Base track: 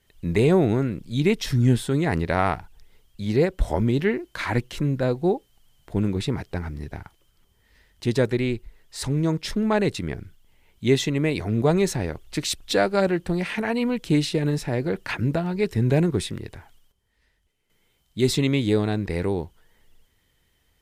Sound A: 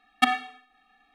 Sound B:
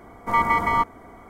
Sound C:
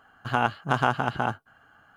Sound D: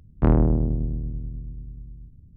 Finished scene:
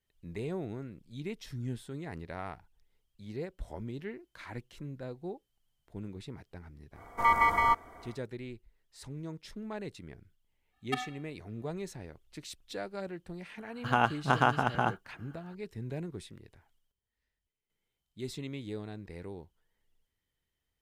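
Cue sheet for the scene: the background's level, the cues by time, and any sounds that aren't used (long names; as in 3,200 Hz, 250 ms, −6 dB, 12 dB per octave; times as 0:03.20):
base track −18.5 dB
0:06.91: mix in B −3.5 dB, fades 0.10 s + parametric band 200 Hz −9.5 dB 2 octaves
0:10.70: mix in A −13.5 dB, fades 0.05 s
0:13.59: mix in C −2.5 dB
not used: D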